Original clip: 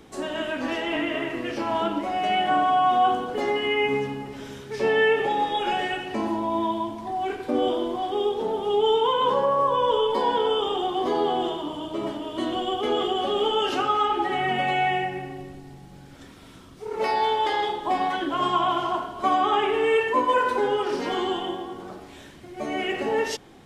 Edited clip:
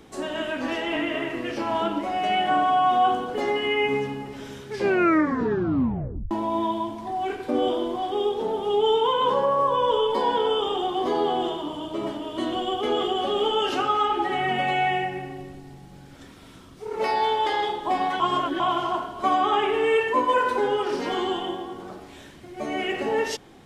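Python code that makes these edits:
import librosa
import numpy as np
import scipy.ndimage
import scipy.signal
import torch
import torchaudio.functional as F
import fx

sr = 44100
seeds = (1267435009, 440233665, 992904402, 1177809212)

y = fx.edit(x, sr, fx.tape_stop(start_s=4.7, length_s=1.61),
    fx.reverse_span(start_s=18.2, length_s=0.4), tone=tone)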